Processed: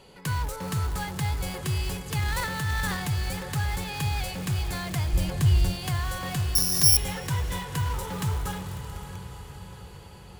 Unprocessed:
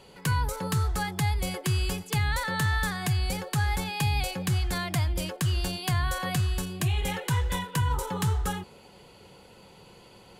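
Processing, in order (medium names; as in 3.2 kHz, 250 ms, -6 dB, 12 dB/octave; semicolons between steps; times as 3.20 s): bass shelf 77 Hz +3.5 dB; echo that smears into a reverb 522 ms, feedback 60%, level -11.5 dB; in parallel at -8 dB: integer overflow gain 27.5 dB; 5.13–5.74 s: on the sum: bass shelf 160 Hz +11 dB; 6.55–6.97 s: careless resampling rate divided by 8×, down filtered, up zero stuff; on a send at -20 dB: reverberation RT60 3.2 s, pre-delay 25 ms; 2.19–3.07 s: on the sum: transient shaper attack -4 dB, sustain +10 dB; trim -3.5 dB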